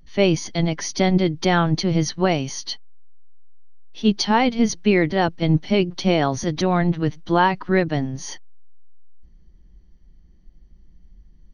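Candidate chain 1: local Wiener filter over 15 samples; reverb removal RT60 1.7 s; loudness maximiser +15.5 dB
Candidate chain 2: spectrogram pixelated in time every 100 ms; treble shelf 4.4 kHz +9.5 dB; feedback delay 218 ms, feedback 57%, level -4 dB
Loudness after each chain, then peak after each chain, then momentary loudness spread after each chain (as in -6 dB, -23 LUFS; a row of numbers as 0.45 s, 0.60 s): -12.5 LUFS, -20.0 LUFS; -1.0 dBFS, -3.0 dBFS; 5 LU, 12 LU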